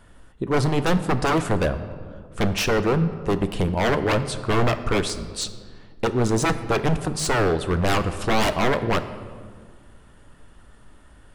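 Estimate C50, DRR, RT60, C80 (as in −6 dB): 12.0 dB, 10.0 dB, 1.8 s, 13.5 dB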